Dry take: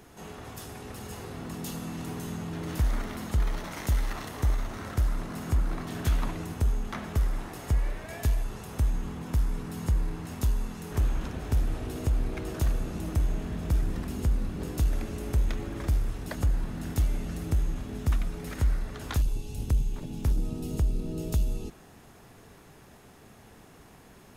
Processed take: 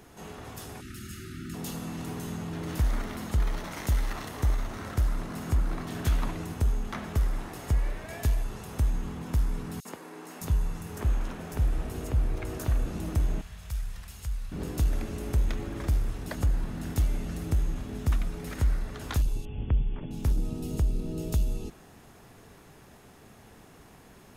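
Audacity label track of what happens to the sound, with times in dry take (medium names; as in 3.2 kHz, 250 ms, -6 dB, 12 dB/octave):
0.810000	1.540000	spectral selection erased 400–1200 Hz
9.800000	12.860000	three bands offset in time highs, mids, lows 50/610 ms, splits 250/4100 Hz
13.410000	14.520000	amplifier tone stack bass-middle-treble 10-0-10
19.450000	20.110000	brick-wall FIR low-pass 3.5 kHz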